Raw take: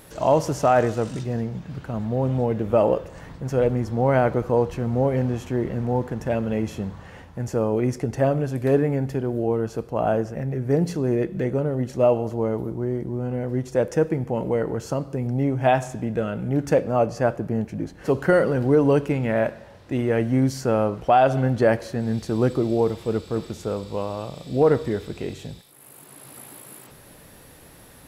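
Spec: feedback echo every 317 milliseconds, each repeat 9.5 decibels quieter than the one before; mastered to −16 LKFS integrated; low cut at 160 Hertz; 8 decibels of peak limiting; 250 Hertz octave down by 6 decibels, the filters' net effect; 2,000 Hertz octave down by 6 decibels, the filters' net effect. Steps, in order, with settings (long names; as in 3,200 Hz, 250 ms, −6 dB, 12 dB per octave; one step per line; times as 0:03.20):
high-pass filter 160 Hz
parametric band 250 Hz −6.5 dB
parametric band 2,000 Hz −8.5 dB
brickwall limiter −16 dBFS
repeating echo 317 ms, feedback 33%, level −9.5 dB
level +12.5 dB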